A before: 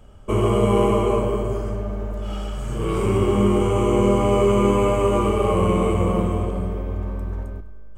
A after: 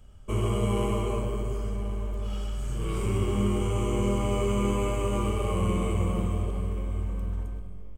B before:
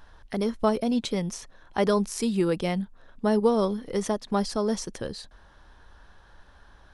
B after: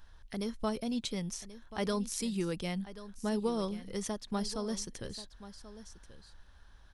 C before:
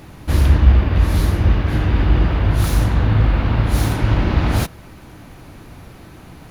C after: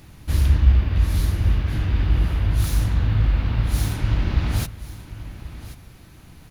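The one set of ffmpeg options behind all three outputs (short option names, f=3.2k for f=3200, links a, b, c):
-filter_complex "[0:a]equalizer=f=590:w=0.31:g=-9.5,asplit=2[a][b];[b]aecho=0:1:1084:0.178[c];[a][c]amix=inputs=2:normalize=0,volume=-2.5dB"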